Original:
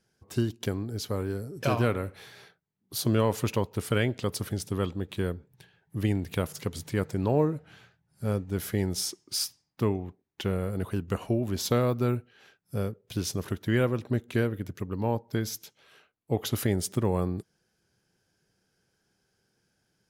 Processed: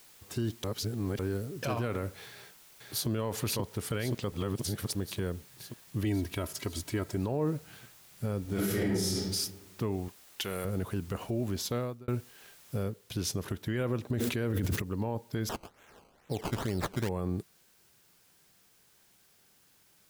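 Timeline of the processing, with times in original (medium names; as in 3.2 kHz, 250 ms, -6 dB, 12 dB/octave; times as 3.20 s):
0.64–1.19 s: reverse
2.27–3.08 s: echo throw 530 ms, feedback 65%, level -1.5 dB
4.32–4.95 s: reverse
6.04–7.17 s: comb 3.1 ms
8.42–9.06 s: reverb throw, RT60 1.1 s, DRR -9.5 dB
10.08–10.65 s: tilt EQ +3.5 dB/octave
11.40–12.08 s: fade out
12.83 s: noise floor step -57 dB -65 dB
14.10–14.82 s: level flattener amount 100%
15.49–17.09 s: decimation with a swept rate 17× 2.2 Hz
whole clip: peak limiter -22 dBFS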